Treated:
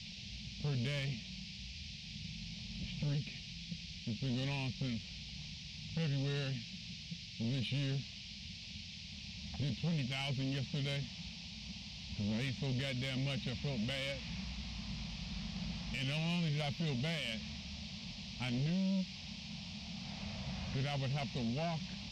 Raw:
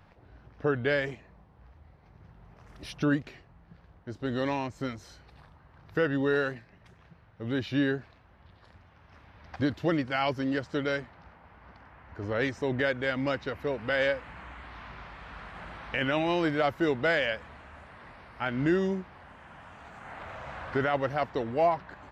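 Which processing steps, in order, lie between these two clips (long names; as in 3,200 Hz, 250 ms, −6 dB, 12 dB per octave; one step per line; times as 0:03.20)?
low-pass that shuts in the quiet parts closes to 900 Hz, open at −26 dBFS
drawn EQ curve 110 Hz 0 dB, 210 Hz +11 dB, 300 Hz −18 dB, 710 Hz −12 dB, 1,500 Hz −22 dB, 2,500 Hz +2 dB, 3,800 Hz +1 dB, 5,700 Hz −14 dB
in parallel at +1.5 dB: downward compressor, threshold −38 dBFS, peak gain reduction 16 dB
on the sum: brickwall limiter −22 dBFS, peak gain reduction 7 dB
soft clipping −28 dBFS, distortion −14 dB
noise in a band 2,300–5,400 Hz −47 dBFS
level −3.5 dB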